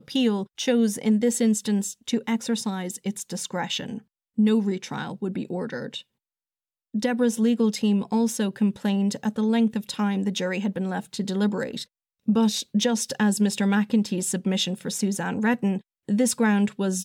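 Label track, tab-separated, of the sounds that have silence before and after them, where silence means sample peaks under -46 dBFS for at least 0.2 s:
4.380000	6.020000	sound
6.940000	11.840000	sound
12.280000	15.810000	sound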